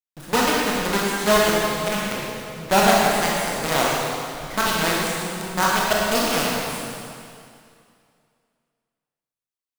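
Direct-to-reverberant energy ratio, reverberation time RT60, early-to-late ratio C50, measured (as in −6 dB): −5.0 dB, 2.4 s, −2.5 dB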